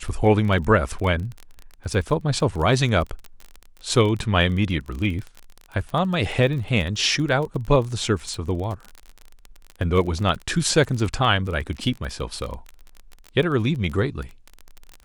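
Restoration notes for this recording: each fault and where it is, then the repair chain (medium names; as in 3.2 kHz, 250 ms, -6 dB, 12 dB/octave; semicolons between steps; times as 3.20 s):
crackle 27 per s -28 dBFS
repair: de-click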